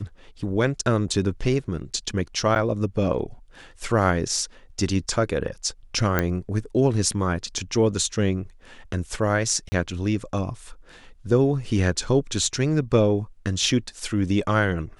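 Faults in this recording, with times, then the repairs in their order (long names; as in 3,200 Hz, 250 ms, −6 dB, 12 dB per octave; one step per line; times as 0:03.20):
0:02.55–0:02.56: drop-out 8.2 ms
0:06.19: click −7 dBFS
0:09.69–0:09.72: drop-out 30 ms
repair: click removal
repair the gap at 0:02.55, 8.2 ms
repair the gap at 0:09.69, 30 ms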